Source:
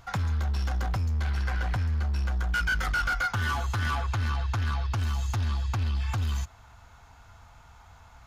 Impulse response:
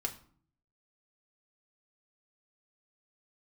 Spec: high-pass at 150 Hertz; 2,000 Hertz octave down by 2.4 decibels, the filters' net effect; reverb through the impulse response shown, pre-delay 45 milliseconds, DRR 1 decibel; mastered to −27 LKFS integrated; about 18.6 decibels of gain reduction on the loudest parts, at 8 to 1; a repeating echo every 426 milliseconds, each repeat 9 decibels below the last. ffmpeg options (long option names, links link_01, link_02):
-filter_complex "[0:a]highpass=150,equalizer=frequency=2000:width_type=o:gain=-4,acompressor=threshold=-47dB:ratio=8,aecho=1:1:426|852|1278|1704:0.355|0.124|0.0435|0.0152,asplit=2[link_01][link_02];[1:a]atrim=start_sample=2205,adelay=45[link_03];[link_02][link_03]afir=irnorm=-1:irlink=0,volume=-2.5dB[link_04];[link_01][link_04]amix=inputs=2:normalize=0,volume=20.5dB"